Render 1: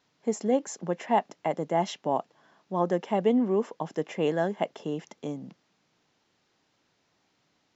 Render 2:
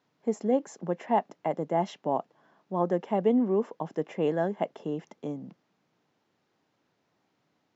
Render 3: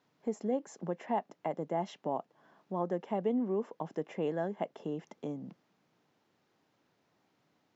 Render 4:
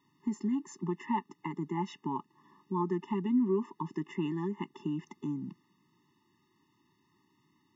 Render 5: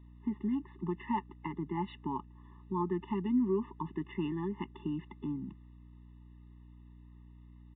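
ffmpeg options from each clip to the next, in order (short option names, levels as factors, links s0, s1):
-af "highpass=96,highshelf=f=2200:g=-10.5"
-af "acompressor=threshold=0.00891:ratio=1.5"
-af "afftfilt=real='re*eq(mod(floor(b*sr/1024/430),2),0)':imag='im*eq(mod(floor(b*sr/1024/430),2),0)':win_size=1024:overlap=0.75,volume=1.78"
-af "aeval=exprs='val(0)+0.00282*(sin(2*PI*60*n/s)+sin(2*PI*2*60*n/s)/2+sin(2*PI*3*60*n/s)/3+sin(2*PI*4*60*n/s)/4+sin(2*PI*5*60*n/s)/5)':c=same,aresample=8000,aresample=44100,volume=0.841"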